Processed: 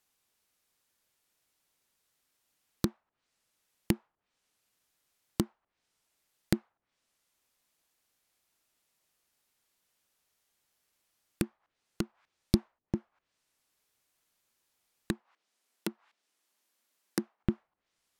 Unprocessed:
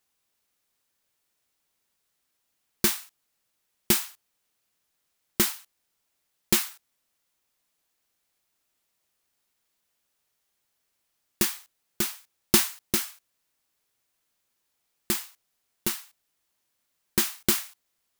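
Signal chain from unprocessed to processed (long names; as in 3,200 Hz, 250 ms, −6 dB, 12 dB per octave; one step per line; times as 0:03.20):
treble cut that deepens with the level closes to 300 Hz, closed at −27 dBFS
0:15.20–0:17.44: high-pass filter 200 Hz 24 dB per octave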